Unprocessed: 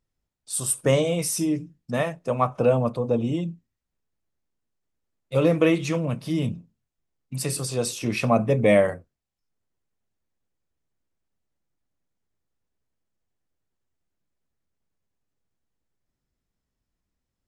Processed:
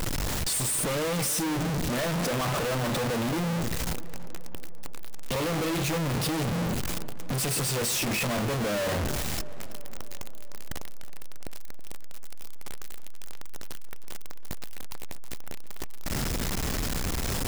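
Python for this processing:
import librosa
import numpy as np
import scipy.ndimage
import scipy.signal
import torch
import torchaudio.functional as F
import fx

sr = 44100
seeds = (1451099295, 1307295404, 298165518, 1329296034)

y = np.sign(x) * np.sqrt(np.mean(np.square(x)))
y = fx.echo_tape(y, sr, ms=324, feedback_pct=73, wet_db=-12.5, lp_hz=1600.0, drive_db=24.0, wow_cents=37)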